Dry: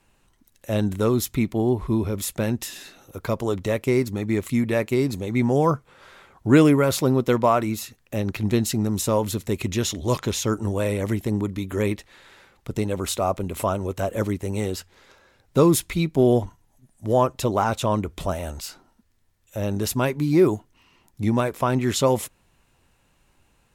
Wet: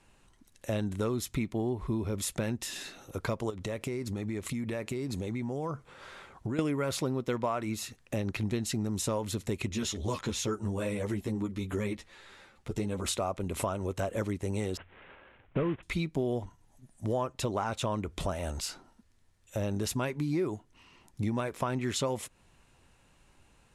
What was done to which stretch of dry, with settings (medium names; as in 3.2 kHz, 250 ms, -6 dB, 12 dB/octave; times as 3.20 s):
3.50–6.59 s: compression, threshold -30 dBFS
9.69–13.06 s: three-phase chorus
14.77–15.83 s: CVSD coder 16 kbps
whole clip: low-pass 11 kHz 24 dB/octave; dynamic bell 2.1 kHz, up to +3 dB, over -35 dBFS, Q 0.9; compression 4:1, threshold -30 dBFS